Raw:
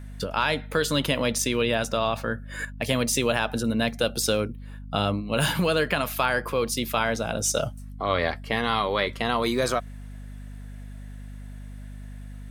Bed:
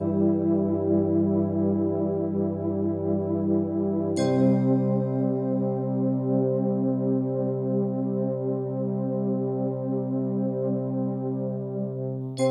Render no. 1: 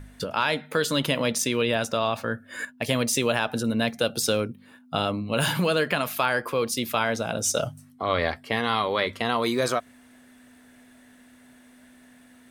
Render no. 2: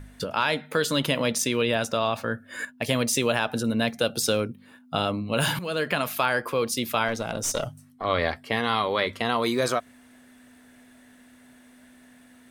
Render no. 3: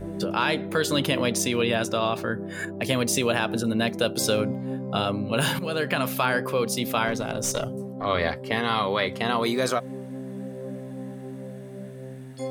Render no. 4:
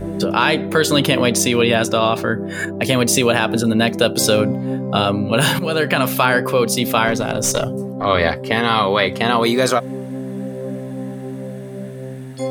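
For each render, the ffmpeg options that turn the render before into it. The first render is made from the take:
-af "bandreject=f=50:t=h:w=4,bandreject=f=100:t=h:w=4,bandreject=f=150:t=h:w=4,bandreject=f=200:t=h:w=4"
-filter_complex "[0:a]asettb=1/sr,asplit=3[s0][s1][s2];[s0]atrim=end=7.084[s3];[s1]atrim=start=7.08:end=8.05,asetpts=PTS-STARTPTS,afade=t=in:d=0.004:c=qsin,afade=t=out:st=0.966:d=0.004:c=qsin,aeval=exprs='(tanh(6.31*val(0)+0.5)-tanh(0.5))/6.31':c=same[s4];[s2]atrim=start=8.046[s5];[s3][s4]acrossfade=d=0.004:c1=hsin:c2=qsin[s6];[s6][s5]acrossfade=d=0.004:c1=qsin:c2=hsin,asplit=2[s7][s8];[s7]atrim=end=5.59,asetpts=PTS-STARTPTS,afade=t=out:st=5.586:d=0.004:c=hsin:silence=0.16788[s9];[s8]atrim=start=5.59,asetpts=PTS-STARTPTS,afade=t=in:d=0.47:c=qsin:silence=0.16788[s10];[s9][s10]concat=n=2:v=0:a=1"
-filter_complex "[1:a]volume=0.355[s0];[0:a][s0]amix=inputs=2:normalize=0"
-af "volume=2.66,alimiter=limit=0.891:level=0:latency=1"

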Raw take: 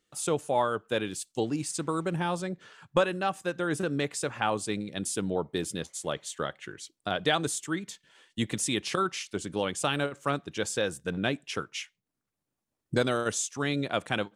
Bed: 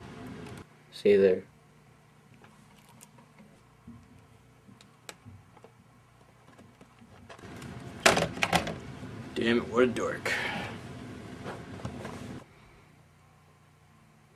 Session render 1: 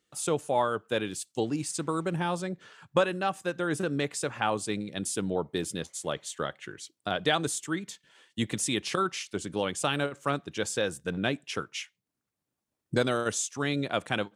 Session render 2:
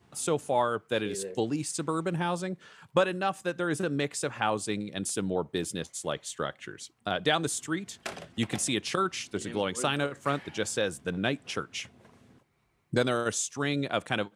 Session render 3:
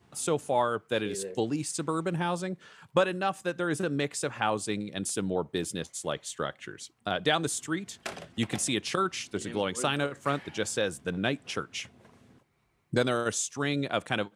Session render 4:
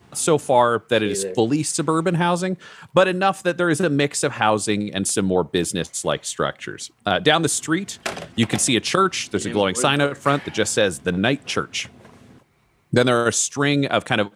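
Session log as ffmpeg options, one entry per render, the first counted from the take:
-af "highpass=48"
-filter_complex "[1:a]volume=0.15[s0];[0:a][s0]amix=inputs=2:normalize=0"
-af anull
-af "volume=3.35,alimiter=limit=0.708:level=0:latency=1"

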